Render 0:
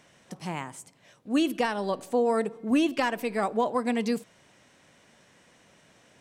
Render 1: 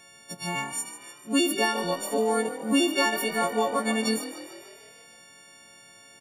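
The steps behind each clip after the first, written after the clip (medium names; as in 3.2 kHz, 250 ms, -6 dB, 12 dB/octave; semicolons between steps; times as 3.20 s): partials quantised in pitch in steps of 4 st; on a send: frequency-shifting echo 148 ms, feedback 59%, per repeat +40 Hz, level -12.5 dB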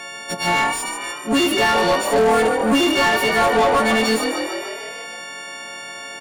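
overdrive pedal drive 27 dB, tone 1.9 kHz, clips at -11.5 dBFS; trim +3.5 dB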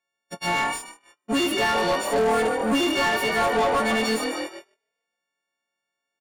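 gate -24 dBFS, range -44 dB; trim -5.5 dB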